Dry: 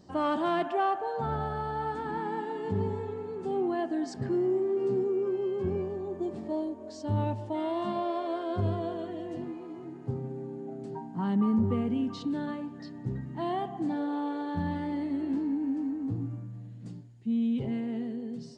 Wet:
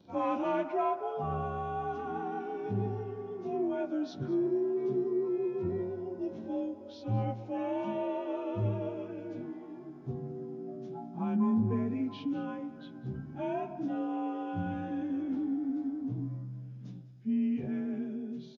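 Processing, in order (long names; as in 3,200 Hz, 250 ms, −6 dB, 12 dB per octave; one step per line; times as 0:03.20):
partials spread apart or drawn together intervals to 91%
single-tap delay 205 ms −18 dB
level −1.5 dB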